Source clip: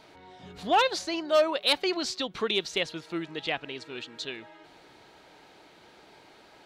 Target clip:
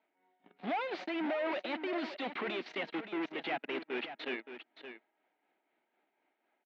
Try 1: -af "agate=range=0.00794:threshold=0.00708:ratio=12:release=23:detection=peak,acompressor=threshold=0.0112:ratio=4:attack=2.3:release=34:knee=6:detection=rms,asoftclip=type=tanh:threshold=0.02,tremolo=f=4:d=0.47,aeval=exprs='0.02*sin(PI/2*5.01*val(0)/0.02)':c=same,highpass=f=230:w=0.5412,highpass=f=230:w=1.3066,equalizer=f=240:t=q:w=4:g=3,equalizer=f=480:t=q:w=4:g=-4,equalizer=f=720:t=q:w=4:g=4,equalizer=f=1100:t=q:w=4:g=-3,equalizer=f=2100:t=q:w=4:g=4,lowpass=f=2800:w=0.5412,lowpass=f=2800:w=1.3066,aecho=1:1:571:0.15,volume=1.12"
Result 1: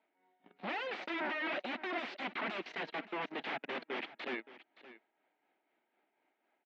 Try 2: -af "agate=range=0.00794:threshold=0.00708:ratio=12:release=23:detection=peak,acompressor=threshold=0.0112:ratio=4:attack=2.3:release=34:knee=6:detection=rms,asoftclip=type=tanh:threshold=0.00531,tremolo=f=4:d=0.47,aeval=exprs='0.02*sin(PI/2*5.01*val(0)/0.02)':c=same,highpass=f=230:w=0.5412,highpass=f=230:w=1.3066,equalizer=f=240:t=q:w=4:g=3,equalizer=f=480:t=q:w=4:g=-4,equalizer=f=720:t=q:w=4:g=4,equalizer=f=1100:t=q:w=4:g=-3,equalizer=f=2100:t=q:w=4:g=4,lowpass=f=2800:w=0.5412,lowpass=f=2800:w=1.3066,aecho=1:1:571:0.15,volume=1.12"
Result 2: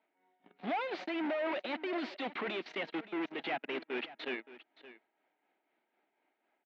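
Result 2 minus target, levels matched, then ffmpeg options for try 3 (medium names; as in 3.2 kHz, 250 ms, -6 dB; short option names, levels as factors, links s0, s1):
echo-to-direct -6 dB
-af "agate=range=0.00794:threshold=0.00708:ratio=12:release=23:detection=peak,acompressor=threshold=0.0112:ratio=4:attack=2.3:release=34:knee=6:detection=rms,asoftclip=type=tanh:threshold=0.00531,tremolo=f=4:d=0.47,aeval=exprs='0.02*sin(PI/2*5.01*val(0)/0.02)':c=same,highpass=f=230:w=0.5412,highpass=f=230:w=1.3066,equalizer=f=240:t=q:w=4:g=3,equalizer=f=480:t=q:w=4:g=-4,equalizer=f=720:t=q:w=4:g=4,equalizer=f=1100:t=q:w=4:g=-3,equalizer=f=2100:t=q:w=4:g=4,lowpass=f=2800:w=0.5412,lowpass=f=2800:w=1.3066,aecho=1:1:571:0.299,volume=1.12"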